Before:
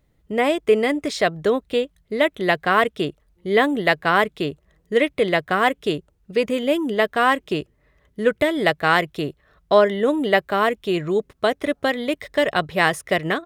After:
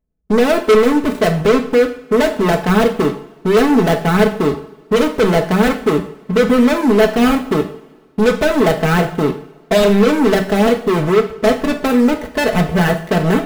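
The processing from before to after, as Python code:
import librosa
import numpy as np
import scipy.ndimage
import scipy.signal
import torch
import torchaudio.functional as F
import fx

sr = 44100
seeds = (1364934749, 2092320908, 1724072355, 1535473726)

y = scipy.ndimage.median_filter(x, 41, mode='constant')
y = fx.peak_eq(y, sr, hz=4600.0, db=-12.5, octaves=0.71)
y = fx.leveller(y, sr, passes=5)
y = y + 0.65 * np.pad(y, (int(4.6 * sr / 1000.0), 0))[:len(y)]
y = fx.rev_double_slope(y, sr, seeds[0], early_s=0.48, late_s=1.7, knee_db=-18, drr_db=5.0)
y = F.gain(torch.from_numpy(y), -3.0).numpy()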